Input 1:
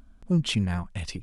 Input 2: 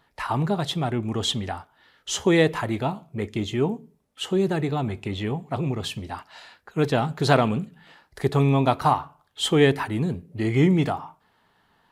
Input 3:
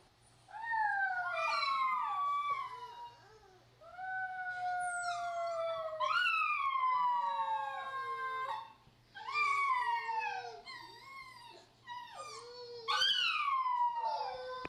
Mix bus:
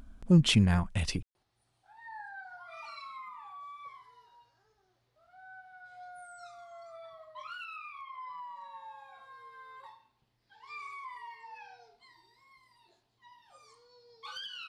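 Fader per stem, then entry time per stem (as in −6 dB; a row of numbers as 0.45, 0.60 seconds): +2.0 dB, muted, −11.5 dB; 0.00 s, muted, 1.35 s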